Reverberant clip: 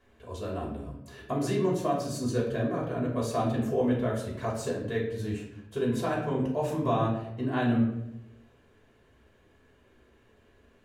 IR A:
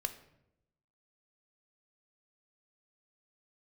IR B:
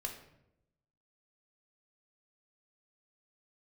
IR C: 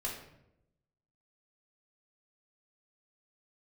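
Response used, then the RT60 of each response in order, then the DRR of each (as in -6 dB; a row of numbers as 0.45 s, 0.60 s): C; 0.85 s, 0.85 s, 0.85 s; 8.0 dB, 1.5 dB, -4.5 dB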